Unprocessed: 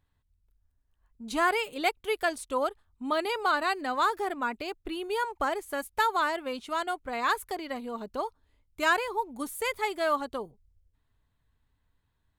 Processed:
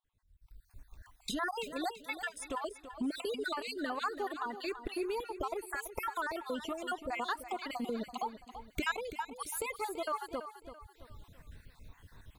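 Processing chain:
time-frequency cells dropped at random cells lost 54%
camcorder AGC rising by 44 dB per second
repeating echo 334 ms, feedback 38%, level −11.5 dB
level −8 dB

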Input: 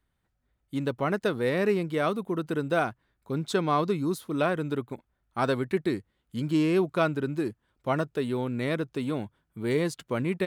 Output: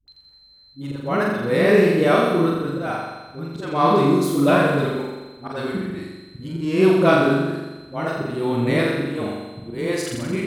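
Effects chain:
steady tone 4,100 Hz −50 dBFS
all-pass dispersion highs, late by 80 ms, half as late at 380 Hz
volume swells 301 ms
on a send: flutter between parallel walls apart 7.3 metres, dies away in 1.2 s
on the sum: level +6.5 dB

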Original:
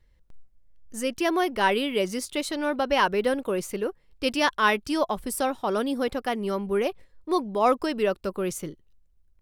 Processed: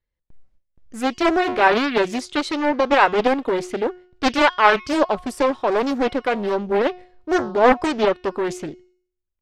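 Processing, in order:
low-pass filter 4,900 Hz 12 dB per octave
parametric band 190 Hz −2.5 dB 0.3 octaves
noise gate with hold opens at −47 dBFS
low-shelf EQ 120 Hz −8 dB
hum removal 362.1 Hz, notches 22
highs frequency-modulated by the lows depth 0.53 ms
level +7 dB

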